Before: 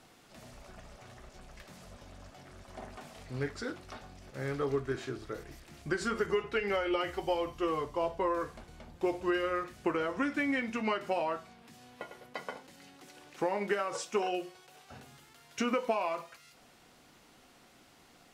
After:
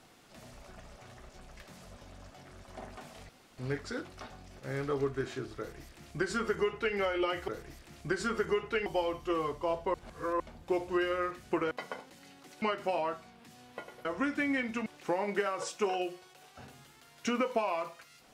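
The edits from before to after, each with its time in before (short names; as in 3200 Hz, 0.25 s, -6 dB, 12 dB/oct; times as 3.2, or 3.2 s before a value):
3.29 insert room tone 0.29 s
5.29–6.67 copy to 7.19
8.27–8.73 reverse
10.04–10.85 swap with 12.28–13.19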